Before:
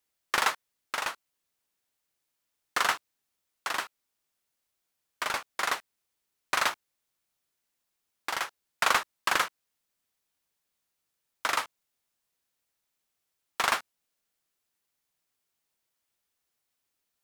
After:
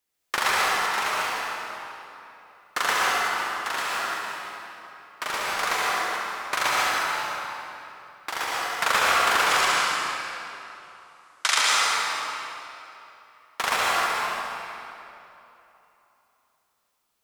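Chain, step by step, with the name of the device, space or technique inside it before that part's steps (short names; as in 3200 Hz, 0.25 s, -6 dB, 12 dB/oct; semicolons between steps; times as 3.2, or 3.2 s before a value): reverse delay 0.22 s, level -9 dB; 9.46–11.58 weighting filter ITU-R 468; tunnel (flutter echo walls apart 11.9 m, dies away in 0.66 s; reverb RT60 3.1 s, pre-delay 0.107 s, DRR -5 dB)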